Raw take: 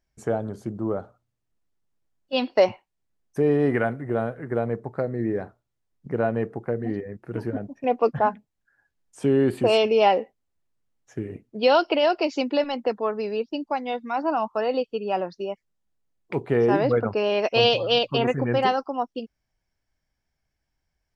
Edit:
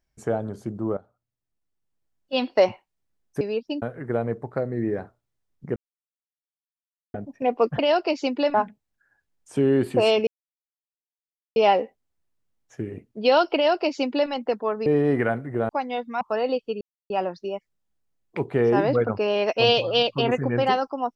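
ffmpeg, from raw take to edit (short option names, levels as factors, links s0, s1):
-filter_complex "[0:a]asplit=13[s0][s1][s2][s3][s4][s5][s6][s7][s8][s9][s10][s11][s12];[s0]atrim=end=0.97,asetpts=PTS-STARTPTS,afade=t=out:st=0.966:d=0.004:c=hsin:silence=0.16788[s13];[s1]atrim=start=0.97:end=3.412,asetpts=PTS-STARTPTS,afade=t=in:d=1.41:silence=0.16788[s14];[s2]atrim=start=13.238:end=13.652[s15];[s3]atrim=start=4.238:end=6.18,asetpts=PTS-STARTPTS,afade=t=out:st=1.938:d=0.004:c=hsin[s16];[s4]atrim=start=6.18:end=7.56,asetpts=PTS-STARTPTS,volume=0[s17];[s5]atrim=start=7.56:end=8.212,asetpts=PTS-STARTPTS,afade=t=in:d=0.004:c=hsin[s18];[s6]atrim=start=11.928:end=12.682[s19];[s7]atrim=start=8.208:end=9.94,asetpts=PTS-STARTPTS,afade=t=out:st=1.728:d=0.004:c=hsin,apad=pad_dur=1.29[s20];[s8]atrim=start=9.94:end=13.242,asetpts=PTS-STARTPTS,afade=t=in:d=0.004:c=hsin[s21];[s9]atrim=start=3.408:end=4.242[s22];[s10]atrim=start=13.648:end=14.172[s23];[s11]atrim=start=14.458:end=15.06,asetpts=PTS-STARTPTS,afade=t=out:st=0.598:d=0.004:c=hsin,apad=pad_dur=0.29[s24];[s12]atrim=start=15.06,asetpts=PTS-STARTPTS,afade=t=in:d=0.004:c=hsin[s25];[s13][s14]concat=n=2:v=0:a=1[s26];[s26][s15]acrossfade=d=0.004:c1=hsin:c2=hsin[s27];[s16][s17][s18]concat=n=3:v=0:a=1[s28];[s27][s28]acrossfade=d=0.004:c1=hsin:c2=hsin[s29];[s29][s19]acrossfade=d=0.004:c1=hsin:c2=hsin[s30];[s20][s21]concat=n=2:v=0:a=1[s31];[s30][s31]acrossfade=d=0.004:c1=hsin:c2=hsin[s32];[s32][s22]acrossfade=d=0.004:c1=hsin:c2=hsin[s33];[s33][s23]acrossfade=d=0.004:c1=hsin:c2=hsin[s34];[s24][s25]concat=n=2:v=0:a=1[s35];[s34][s35]acrossfade=d=0.004:c1=hsin:c2=hsin"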